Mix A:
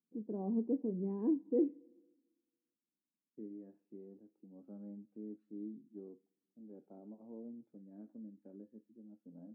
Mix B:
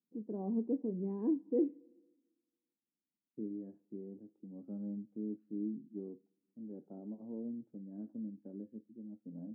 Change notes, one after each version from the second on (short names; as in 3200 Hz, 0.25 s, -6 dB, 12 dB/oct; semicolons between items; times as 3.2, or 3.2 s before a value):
second voice: add tilt -3.5 dB/oct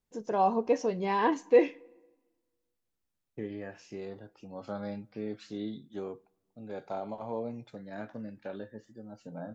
master: remove Butterworth band-pass 250 Hz, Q 1.6